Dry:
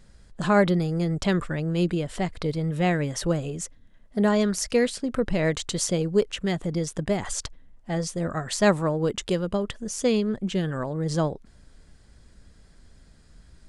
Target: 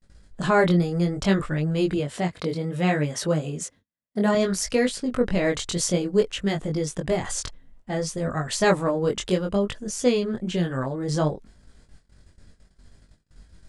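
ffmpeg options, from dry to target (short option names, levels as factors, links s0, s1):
-filter_complex "[0:a]asettb=1/sr,asplit=3[s0][s1][s2];[s0]atrim=end=1.974[s3];[s1]atrim=start=1.97:end=4.35,asetpts=PTS-STARTPTS,afade=t=in:d=0.004:c=qsin,afade=t=out:st=2.376:d=0.004:c=qsin,highpass=110[s4];[s2]atrim=start=4.346[s5];[s3][s4]acrossfade=d=0.004:c1=hsin:c2=qsin[s6];[s6][s5]acrossfade=d=0.004:c1=qsin:c2=hsin,agate=range=0.02:threshold=0.00316:ratio=16:detection=peak,flanger=delay=19.5:depth=3.6:speed=0.61,volume=1.68"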